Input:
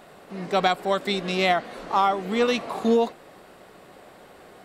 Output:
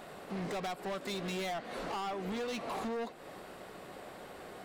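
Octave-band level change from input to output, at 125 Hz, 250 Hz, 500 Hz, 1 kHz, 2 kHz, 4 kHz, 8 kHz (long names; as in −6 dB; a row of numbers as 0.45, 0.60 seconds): −8.5, −12.5, −14.5, −15.0, −13.5, −13.5, −6.0 decibels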